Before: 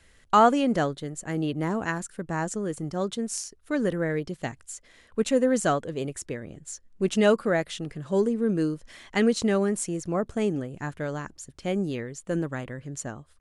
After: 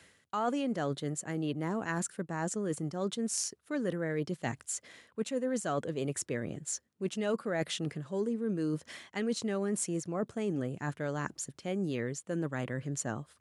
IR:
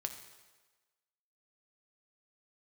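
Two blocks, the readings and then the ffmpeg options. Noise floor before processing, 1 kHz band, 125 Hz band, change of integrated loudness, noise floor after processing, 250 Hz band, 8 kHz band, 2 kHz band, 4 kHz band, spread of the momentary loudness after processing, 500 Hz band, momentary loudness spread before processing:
−59 dBFS, −11.5 dB, −4.5 dB, −7.5 dB, −69 dBFS, −7.0 dB, −1.5 dB, −7.0 dB, −5.5 dB, 5 LU, −8.5 dB, 14 LU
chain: -af "highpass=frequency=99:width=0.5412,highpass=frequency=99:width=1.3066,areverse,acompressor=threshold=-34dB:ratio=6,areverse,volume=3.5dB"

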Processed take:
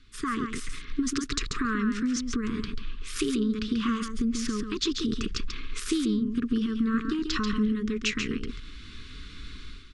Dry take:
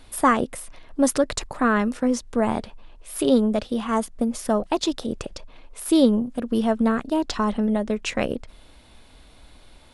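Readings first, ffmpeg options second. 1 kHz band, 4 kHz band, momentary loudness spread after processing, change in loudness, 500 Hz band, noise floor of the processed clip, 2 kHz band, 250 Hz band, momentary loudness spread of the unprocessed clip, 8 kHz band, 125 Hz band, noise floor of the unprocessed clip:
−11.5 dB, +0.5 dB, 17 LU, −6.0 dB, −13.0 dB, −43 dBFS, −3.5 dB, −4.5 dB, 11 LU, −4.0 dB, −2.5 dB, −50 dBFS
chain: -af "lowpass=frequency=6700:width=0.5412,lowpass=frequency=6700:width=1.3066,agate=range=-7dB:threshold=-44dB:ratio=16:detection=peak,equalizer=frequency=350:width_type=o:width=0.27:gain=-6.5,dynaudnorm=framelen=120:gausssize=5:maxgain=15dB,alimiter=limit=-11.5dB:level=0:latency=1:release=32,acompressor=threshold=-24dB:ratio=6,asuperstop=centerf=690:order=12:qfactor=1,aecho=1:1:138:0.473"

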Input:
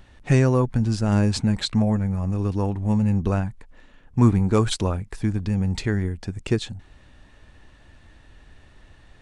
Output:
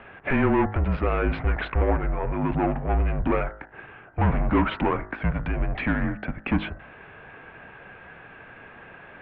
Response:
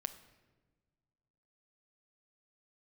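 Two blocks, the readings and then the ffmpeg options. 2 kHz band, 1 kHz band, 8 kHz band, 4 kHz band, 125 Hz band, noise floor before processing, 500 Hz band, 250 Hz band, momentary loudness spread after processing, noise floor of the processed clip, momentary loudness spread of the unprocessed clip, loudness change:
+6.0 dB, +5.0 dB, below −40 dB, −10.0 dB, −6.5 dB, −52 dBFS, −0.5 dB, −4.0 dB, 22 LU, −47 dBFS, 8 LU, −3.0 dB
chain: -filter_complex "[0:a]asplit=2[link_01][link_02];[link_02]highpass=frequency=720:poles=1,volume=30dB,asoftclip=type=tanh:threshold=-4dB[link_03];[link_01][link_03]amix=inputs=2:normalize=0,lowpass=frequency=2100:poles=1,volume=-6dB,highpass=frequency=170:width_type=q:width=0.5412,highpass=frequency=170:width_type=q:width=1.307,lowpass=frequency=2800:width_type=q:width=0.5176,lowpass=frequency=2800:width_type=q:width=0.7071,lowpass=frequency=2800:width_type=q:width=1.932,afreqshift=-150,bandreject=frequency=52.76:width_type=h:width=4,bandreject=frequency=105.52:width_type=h:width=4,bandreject=frequency=158.28:width_type=h:width=4,bandreject=frequency=211.04:width_type=h:width=4,bandreject=frequency=263.8:width_type=h:width=4,bandreject=frequency=316.56:width_type=h:width=4,bandreject=frequency=369.32:width_type=h:width=4,bandreject=frequency=422.08:width_type=h:width=4,bandreject=frequency=474.84:width_type=h:width=4,bandreject=frequency=527.6:width_type=h:width=4,bandreject=frequency=580.36:width_type=h:width=4,bandreject=frequency=633.12:width_type=h:width=4,bandreject=frequency=685.88:width_type=h:width=4,bandreject=frequency=738.64:width_type=h:width=4,bandreject=frequency=791.4:width_type=h:width=4,bandreject=frequency=844.16:width_type=h:width=4,bandreject=frequency=896.92:width_type=h:width=4,bandreject=frequency=949.68:width_type=h:width=4,bandreject=frequency=1002.44:width_type=h:width=4,bandreject=frequency=1055.2:width_type=h:width=4,bandreject=frequency=1107.96:width_type=h:width=4,bandreject=frequency=1160.72:width_type=h:width=4,bandreject=frequency=1213.48:width_type=h:width=4,bandreject=frequency=1266.24:width_type=h:width=4,bandreject=frequency=1319:width_type=h:width=4,bandreject=frequency=1371.76:width_type=h:width=4,bandreject=frequency=1424.52:width_type=h:width=4,bandreject=frequency=1477.28:width_type=h:width=4,bandreject=frequency=1530.04:width_type=h:width=4,bandreject=frequency=1582.8:width_type=h:width=4,bandreject=frequency=1635.56:width_type=h:width=4,bandreject=frequency=1688.32:width_type=h:width=4,bandreject=frequency=1741.08:width_type=h:width=4,bandreject=frequency=1793.84:width_type=h:width=4,bandreject=frequency=1846.6:width_type=h:width=4,bandreject=frequency=1899.36:width_type=h:width=4,bandreject=frequency=1952.12:width_type=h:width=4,bandreject=frequency=2004.88:width_type=h:width=4,volume=-7dB"

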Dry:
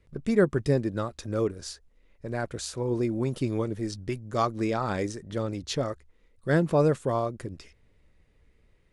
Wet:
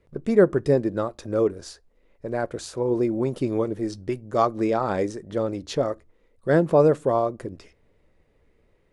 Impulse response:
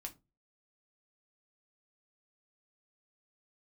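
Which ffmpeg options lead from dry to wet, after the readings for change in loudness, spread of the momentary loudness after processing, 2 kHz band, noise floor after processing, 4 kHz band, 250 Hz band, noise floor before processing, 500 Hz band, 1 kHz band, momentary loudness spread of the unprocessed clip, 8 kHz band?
+4.5 dB, 13 LU, +1.0 dB, −64 dBFS, −2.0 dB, +3.5 dB, −64 dBFS, +6.0 dB, +4.5 dB, 16 LU, −2.5 dB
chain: -filter_complex "[0:a]equalizer=frequency=550:width_type=o:width=2.6:gain=9.5,asplit=2[link_01][link_02];[1:a]atrim=start_sample=2205[link_03];[link_02][link_03]afir=irnorm=-1:irlink=0,volume=-10dB[link_04];[link_01][link_04]amix=inputs=2:normalize=0,volume=-4dB"

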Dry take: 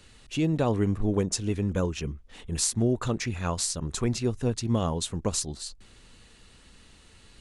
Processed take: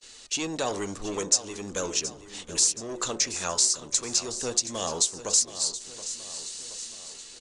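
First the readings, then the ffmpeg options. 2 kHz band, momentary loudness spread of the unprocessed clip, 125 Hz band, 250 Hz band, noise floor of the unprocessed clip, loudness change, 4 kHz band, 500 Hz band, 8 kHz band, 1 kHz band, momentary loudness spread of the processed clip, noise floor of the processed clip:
+2.0 dB, 10 LU, −17.0 dB, −9.5 dB, −55 dBFS, +1.5 dB, +7.5 dB, −3.0 dB, +9.0 dB, 0.0 dB, 13 LU, −48 dBFS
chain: -filter_complex "[0:a]bass=frequency=250:gain=-15,treble=frequency=4000:gain=14,bandreject=frequency=71.84:width_type=h:width=4,bandreject=frequency=143.68:width_type=h:width=4,bandreject=frequency=215.52:width_type=h:width=4,bandreject=frequency=287.36:width_type=h:width=4,bandreject=frequency=359.2:width_type=h:width=4,bandreject=frequency=431.04:width_type=h:width=4,bandreject=frequency=502.88:width_type=h:width=4,bandreject=frequency=574.72:width_type=h:width=4,bandreject=frequency=646.56:width_type=h:width=4,bandreject=frequency=718.4:width_type=h:width=4,bandreject=frequency=790.24:width_type=h:width=4,bandreject=frequency=862.08:width_type=h:width=4,bandreject=frequency=933.92:width_type=h:width=4,bandreject=frequency=1005.76:width_type=h:width=4,bandreject=frequency=1077.6:width_type=h:width=4,bandreject=frequency=1149.44:width_type=h:width=4,bandreject=frequency=1221.28:width_type=h:width=4,bandreject=frequency=1293.12:width_type=h:width=4,bandreject=frequency=1364.96:width_type=h:width=4,bandreject=frequency=1436.8:width_type=h:width=4,bandreject=frequency=1508.64:width_type=h:width=4,bandreject=frequency=1580.48:width_type=h:width=4,acrossover=split=620|5200[link_01][link_02][link_03];[link_01]asoftclip=type=tanh:threshold=-35dB[link_04];[link_02]flanger=delay=1.6:depth=7.6:regen=77:speed=0.38:shape=triangular[link_05];[link_03]dynaudnorm=framelen=190:gausssize=7:maxgain=13.5dB[link_06];[link_04][link_05][link_06]amix=inputs=3:normalize=0,equalizer=frequency=84:width_type=o:width=2.4:gain=-6,asplit=2[link_07][link_08];[link_08]acrusher=bits=5:mode=log:mix=0:aa=0.000001,volume=-5dB[link_09];[link_07][link_09]amix=inputs=2:normalize=0,acompressor=threshold=-26dB:ratio=2,lowpass=frequency=7000:width=0.5412,lowpass=frequency=7000:width=1.3066,aecho=1:1:724|1448|2172|2896|3620:0.211|0.112|0.0594|0.0315|0.0167,agate=range=-31dB:threshold=-52dB:ratio=16:detection=peak,volume=2.5dB"

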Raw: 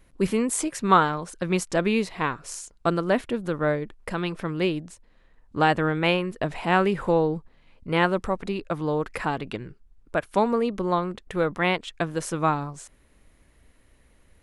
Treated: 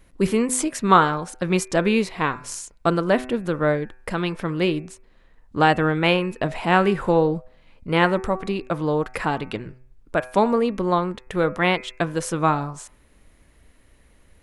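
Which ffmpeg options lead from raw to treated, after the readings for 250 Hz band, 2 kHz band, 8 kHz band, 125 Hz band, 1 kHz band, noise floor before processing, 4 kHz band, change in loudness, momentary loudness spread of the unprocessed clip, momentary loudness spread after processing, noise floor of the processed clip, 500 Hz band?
+3.5 dB, +3.5 dB, +3.5 dB, +3.5 dB, +3.5 dB, −59 dBFS, +3.5 dB, +3.5 dB, 10 LU, 10 LU, −55 dBFS, +3.0 dB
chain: -af "bandreject=frequency=126.7:width_type=h:width=4,bandreject=frequency=253.4:width_type=h:width=4,bandreject=frequency=380.1:width_type=h:width=4,bandreject=frequency=506.8:width_type=h:width=4,bandreject=frequency=633.5:width_type=h:width=4,bandreject=frequency=760.2:width_type=h:width=4,bandreject=frequency=886.9:width_type=h:width=4,bandreject=frequency=1013.6:width_type=h:width=4,bandreject=frequency=1140.3:width_type=h:width=4,bandreject=frequency=1267:width_type=h:width=4,bandreject=frequency=1393.7:width_type=h:width=4,bandreject=frequency=1520.4:width_type=h:width=4,bandreject=frequency=1647.1:width_type=h:width=4,bandreject=frequency=1773.8:width_type=h:width=4,bandreject=frequency=1900.5:width_type=h:width=4,bandreject=frequency=2027.2:width_type=h:width=4,bandreject=frequency=2153.9:width_type=h:width=4,bandreject=frequency=2280.6:width_type=h:width=4,bandreject=frequency=2407.3:width_type=h:width=4,bandreject=frequency=2534:width_type=h:width=4,bandreject=frequency=2660.7:width_type=h:width=4,volume=3.5dB"

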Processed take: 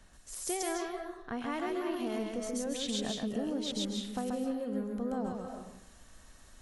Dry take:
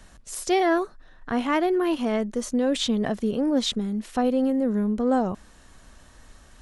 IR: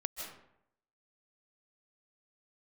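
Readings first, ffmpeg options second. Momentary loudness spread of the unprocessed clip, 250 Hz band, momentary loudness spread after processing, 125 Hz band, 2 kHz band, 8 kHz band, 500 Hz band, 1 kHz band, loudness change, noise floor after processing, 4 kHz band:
7 LU, −11.5 dB, 8 LU, −10.0 dB, −11.0 dB, −3.0 dB, −11.5 dB, −12.0 dB, −11.0 dB, −57 dBFS, −7.5 dB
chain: -filter_complex "[0:a]acompressor=threshold=-24dB:ratio=6,asplit=2[link_01][link_02];[1:a]atrim=start_sample=2205,highshelf=frequency=4200:gain=11.5,adelay=133[link_03];[link_02][link_03]afir=irnorm=-1:irlink=0,volume=-3dB[link_04];[link_01][link_04]amix=inputs=2:normalize=0,volume=-9dB"

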